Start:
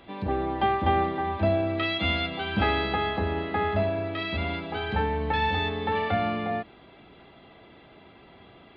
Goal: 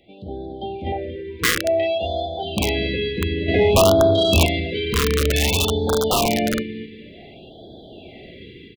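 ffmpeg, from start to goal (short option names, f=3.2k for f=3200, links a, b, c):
-filter_complex "[0:a]asettb=1/sr,asplit=3[a][b][c];[a]atrim=end=0.924[d];[b]atrim=start=0.92:end=2.43,asetpts=PTS-STARTPTS,afade=t=in:d=0.004:c=qsin,afade=t=out:st=1.506:d=0.004:c=qsin,equalizer=f=125:t=o:w=1:g=-11,equalizer=f=250:t=o:w=1:g=-10,equalizer=f=500:t=o:w=1:g=5,equalizer=f=1k:t=o:w=1:g=12,equalizer=f=2k:t=o:w=1:g=-4,equalizer=f=4k:t=o:w=1:g=-8[e];[c]atrim=start=2.426[f];[d][e]acrossfade=d=0.004:c1=hsin:c2=qsin[g];[g][f]acrossfade=d=0.004:c1=qsin:c2=hsin,dynaudnorm=f=720:g=3:m=16.5dB,asuperstop=centerf=1200:order=8:qfactor=0.97,bandreject=f=50:t=h:w=6,bandreject=f=100:t=h:w=6,bandreject=f=150:t=h:w=6,bandreject=f=200:t=h:w=6,bandreject=f=250:t=h:w=6,bandreject=f=300:t=h:w=6,aecho=1:1:232|464|696|928:0.355|0.11|0.0341|0.0106,aeval=exprs='(mod(2.51*val(0)+1,2)-1)/2.51':c=same,asettb=1/sr,asplit=3[h][i][j];[h]atrim=end=3.484[k];[i]atrim=start=3.48:end=4.46,asetpts=PTS-STARTPTS,afade=t=in:d=0.004:c=qsin,afade=t=out:st=0.976:d=0.004:c=qsin,acontrast=84[l];[j]atrim=start=4.456[m];[k][l]acrossfade=d=0.004:c1=hsin:c2=qsin[n];[n][m]acrossfade=d=0.004:c1=qsin:c2=hsin,afftfilt=real='re*(1-between(b*sr/1024,690*pow(2300/690,0.5+0.5*sin(2*PI*0.55*pts/sr))/1.41,690*pow(2300/690,0.5+0.5*sin(2*PI*0.55*pts/sr))*1.41))':imag='im*(1-between(b*sr/1024,690*pow(2300/690,0.5+0.5*sin(2*PI*0.55*pts/sr))/1.41,690*pow(2300/690,0.5+0.5*sin(2*PI*0.55*pts/sr))*1.41))':win_size=1024:overlap=0.75,volume=-3.5dB"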